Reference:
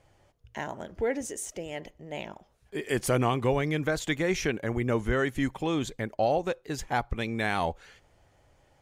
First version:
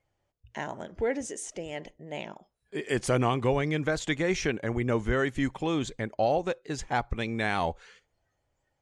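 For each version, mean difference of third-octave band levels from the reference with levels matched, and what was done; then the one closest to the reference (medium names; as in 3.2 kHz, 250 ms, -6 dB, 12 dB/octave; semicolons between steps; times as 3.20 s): 1.0 dB: low-pass 9 kHz 24 dB/octave; spectral noise reduction 15 dB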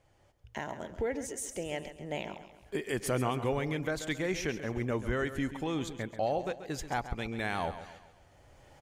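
4.5 dB: recorder AGC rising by 11 dB/s; feedback delay 135 ms, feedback 45%, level -12 dB; trim -5.5 dB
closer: first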